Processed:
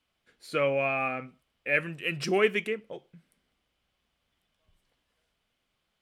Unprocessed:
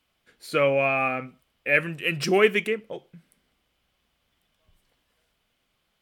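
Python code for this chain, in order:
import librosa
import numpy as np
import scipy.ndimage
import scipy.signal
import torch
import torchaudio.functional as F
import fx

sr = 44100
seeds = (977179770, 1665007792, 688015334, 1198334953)

y = scipy.signal.sosfilt(scipy.signal.bessel(2, 11000.0, 'lowpass', norm='mag', fs=sr, output='sos'), x)
y = F.gain(torch.from_numpy(y), -5.0).numpy()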